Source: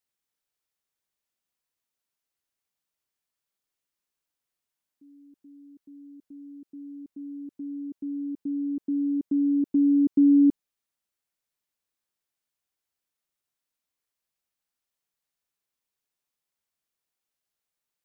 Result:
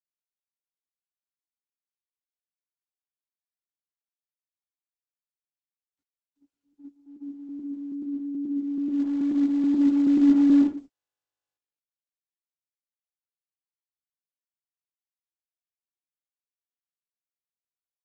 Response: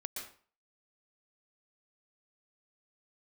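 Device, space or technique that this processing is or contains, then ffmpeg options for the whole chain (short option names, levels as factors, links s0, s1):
speakerphone in a meeting room: -filter_complex "[1:a]atrim=start_sample=2205[s0];[0:a][s0]afir=irnorm=-1:irlink=0,asplit=2[s1][s2];[s2]adelay=100,highpass=300,lowpass=3400,asoftclip=type=hard:threshold=0.0596,volume=0.141[s3];[s1][s3]amix=inputs=2:normalize=0,dynaudnorm=f=200:g=7:m=3.98,agate=range=0.00158:threshold=0.0251:ratio=16:detection=peak,volume=0.473" -ar 48000 -c:a libopus -b:a 12k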